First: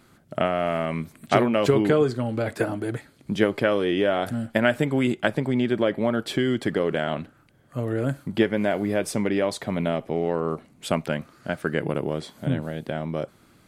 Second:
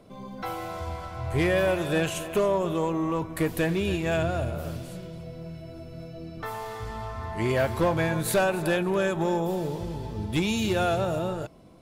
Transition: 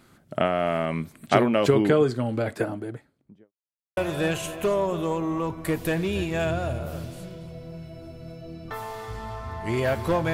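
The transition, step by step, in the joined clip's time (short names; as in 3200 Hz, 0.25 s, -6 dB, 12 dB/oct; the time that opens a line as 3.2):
first
2.28–3.53 studio fade out
3.53–3.97 mute
3.97 switch to second from 1.69 s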